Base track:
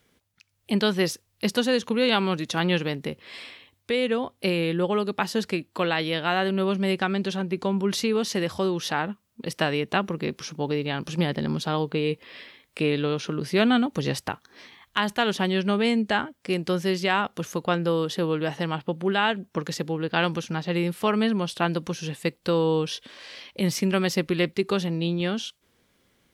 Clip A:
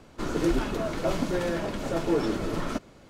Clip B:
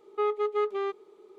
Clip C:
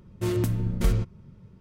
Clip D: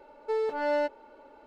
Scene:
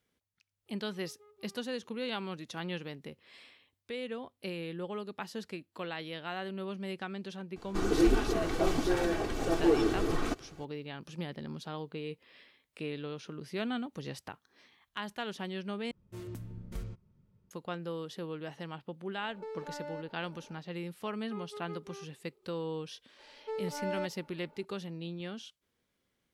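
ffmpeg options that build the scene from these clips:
-filter_complex "[2:a]asplit=2[s0][s1];[4:a]asplit=2[s2][s3];[0:a]volume=0.188[s4];[s0]acompressor=threshold=0.00794:ratio=6:attack=3.2:release=140:knee=1:detection=peak[s5];[1:a]aecho=1:1:2.6:0.67[s6];[s2]acompressor=threshold=0.02:ratio=6:attack=3.2:release=140:knee=1:detection=peak[s7];[s4]asplit=2[s8][s9];[s8]atrim=end=15.914[s10];[3:a]atrim=end=1.6,asetpts=PTS-STARTPTS,volume=0.133[s11];[s9]atrim=start=17.506[s12];[s5]atrim=end=1.38,asetpts=PTS-STARTPTS,volume=0.15,afade=t=in:d=0.004:c=hsin,afade=t=out:st=1.376:d=0.004:c=hsin,adelay=660[s13];[s6]atrim=end=3.09,asetpts=PTS-STARTPTS,volume=0.708,afade=t=in:d=0.004:c=hsin,afade=t=out:st=3.086:d=0.004:c=hsin,adelay=7560[s14];[s7]atrim=end=1.46,asetpts=PTS-STARTPTS,volume=0.562,afade=t=in:d=0.004:c=hsin,afade=t=out:st=1.456:d=0.004:c=hsin,adelay=19140[s15];[s1]atrim=end=1.38,asetpts=PTS-STARTPTS,volume=0.133,afade=t=in:d=0.004:c=hsin,afade=t=out:st=1.376:d=0.004:c=hsin,adelay=21130[s16];[s3]atrim=end=1.46,asetpts=PTS-STARTPTS,volume=0.376,afade=t=in:d=0.004:c=hsin,afade=t=out:st=1.456:d=0.004:c=hsin,adelay=23190[s17];[s10][s11]acrossfade=d=0.004:c1=hsin:c2=hsin[s18];[s18][s12]acrossfade=d=0.004:c1=hsin:c2=hsin[s19];[s19][s13][s14][s15][s16][s17]amix=inputs=6:normalize=0"

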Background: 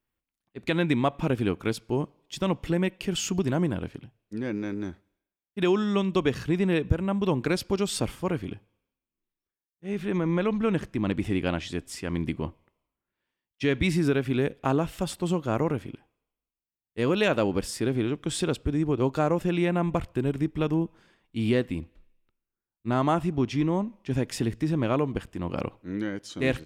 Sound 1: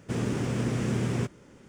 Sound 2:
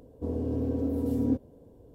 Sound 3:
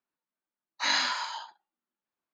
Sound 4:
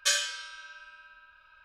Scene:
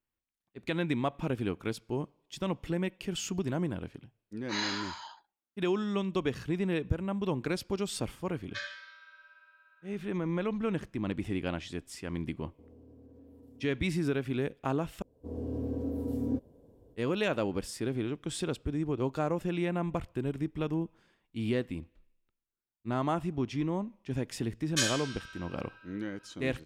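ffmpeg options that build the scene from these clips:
-filter_complex "[4:a]asplit=2[s0][s1];[2:a]asplit=2[s2][s3];[0:a]volume=0.473[s4];[s0]highpass=390,equalizer=f=430:t=q:w=4:g=-10,equalizer=f=640:t=q:w=4:g=5,equalizer=f=1900:t=q:w=4:g=6,equalizer=f=2900:t=q:w=4:g=-10,lowpass=f=3900:w=0.5412,lowpass=f=3900:w=1.3066[s5];[s2]acompressor=threshold=0.02:ratio=6:attack=3.2:release=140:knee=1:detection=peak[s6];[s3]dynaudnorm=f=190:g=3:m=2.66[s7];[s4]asplit=2[s8][s9];[s8]atrim=end=15.024[s10];[s7]atrim=end=1.94,asetpts=PTS-STARTPTS,volume=0.211[s11];[s9]atrim=start=16.956[s12];[3:a]atrim=end=2.33,asetpts=PTS-STARTPTS,volume=0.422,afade=t=in:d=0.004:c=hsin,afade=t=out:st=2.326:d=0.004:c=hsin,adelay=162729S[s13];[s5]atrim=end=1.64,asetpts=PTS-STARTPTS,volume=0.335,afade=t=in:d=0.004:c=hsin,afade=t=out:st=1.636:d=0.004:c=hsin,adelay=8490[s14];[s6]atrim=end=1.94,asetpts=PTS-STARTPTS,volume=0.133,afade=t=in:d=0.004:c=hsin,afade=t=out:st=1.936:d=0.004:c=hsin,adelay=12370[s15];[s1]atrim=end=1.64,asetpts=PTS-STARTPTS,volume=0.668,afade=t=in:d=0.004:c=hsin,afade=t=out:st=1.636:d=0.004:c=hsin,adelay=24710[s16];[s10][s11]acrossfade=d=0.004:c1=hsin:c2=hsin[s17];[s17][s12]acrossfade=d=0.004:c1=hsin:c2=hsin[s18];[s18][s13][s14][s15][s16]amix=inputs=5:normalize=0"

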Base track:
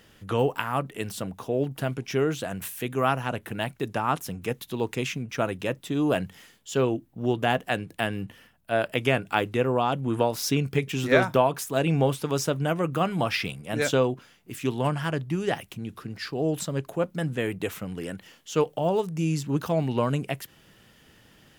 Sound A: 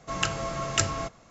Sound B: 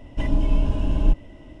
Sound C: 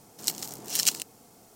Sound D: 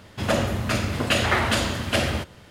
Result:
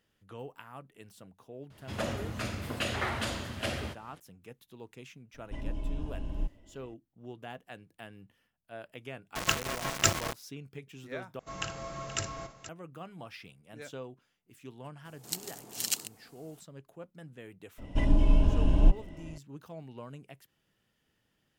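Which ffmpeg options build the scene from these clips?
-filter_complex "[2:a]asplit=2[s0][s1];[1:a]asplit=2[s2][s3];[0:a]volume=0.1[s4];[s2]aeval=exprs='val(0)*gte(abs(val(0)),0.0447)':c=same[s5];[s3]aecho=1:1:57|476:0.299|0.211[s6];[3:a]equalizer=f=5600:t=o:w=0.35:g=-4[s7];[s4]asplit=2[s8][s9];[s8]atrim=end=11.394[s10];[s6]atrim=end=1.3,asetpts=PTS-STARTPTS,volume=0.335[s11];[s9]atrim=start=12.686[s12];[4:a]atrim=end=2.5,asetpts=PTS-STARTPTS,volume=0.266,afade=t=in:d=0.004:c=hsin,afade=t=out:st=2.496:d=0.004:c=hsin,adelay=1700[s13];[s0]atrim=end=1.6,asetpts=PTS-STARTPTS,volume=0.178,afade=t=in:d=0.004:c=hsin,afade=t=out:st=1.596:d=0.004:c=hsin,adelay=5340[s14];[s5]atrim=end=1.3,asetpts=PTS-STARTPTS,afade=t=in:d=0.004:c=hsin,afade=t=out:st=1.296:d=0.004:c=hsin,adelay=9260[s15];[s7]atrim=end=1.55,asetpts=PTS-STARTPTS,volume=0.501,afade=t=in:d=0.004:c=hsin,afade=t=out:st=1.546:d=0.004:c=hsin,adelay=15050[s16];[s1]atrim=end=1.6,asetpts=PTS-STARTPTS,volume=0.75,afade=t=in:d=0.004:c=hsin,afade=t=out:st=1.596:d=0.004:c=hsin,adelay=17780[s17];[s10][s11]acrossfade=d=0.004:c1=hsin:c2=hsin[s18];[s18][s12]acrossfade=d=0.004:c1=hsin:c2=hsin[s19];[s19][s13][s14][s15][s16][s17]amix=inputs=6:normalize=0"

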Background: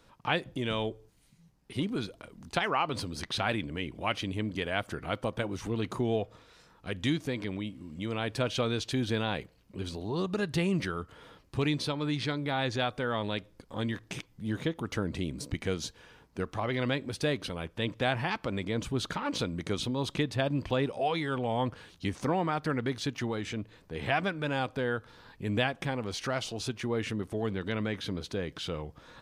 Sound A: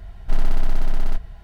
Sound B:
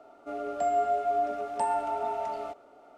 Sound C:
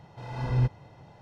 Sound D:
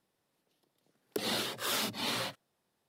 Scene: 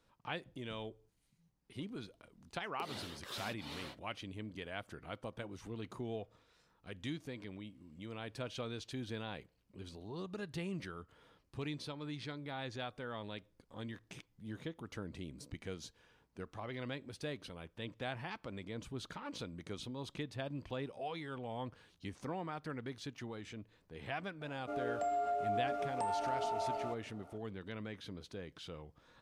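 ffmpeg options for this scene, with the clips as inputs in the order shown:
-filter_complex "[0:a]volume=0.237[s0];[4:a]highshelf=f=8800:g=-9[s1];[2:a]acompressor=threshold=0.0398:ratio=6:attack=3.2:release=140:knee=1:detection=peak[s2];[s1]atrim=end=2.88,asetpts=PTS-STARTPTS,volume=0.224,afade=t=in:d=0.004:c=hsin,afade=t=out:st=2.876:d=0.004:c=hsin,adelay=1640[s3];[s2]atrim=end=2.97,asetpts=PTS-STARTPTS,volume=0.631,afade=t=in:d=0.004:c=hsin,afade=t=out:st=2.966:d=0.004:c=hsin,adelay=24410[s4];[s0][s3][s4]amix=inputs=3:normalize=0"

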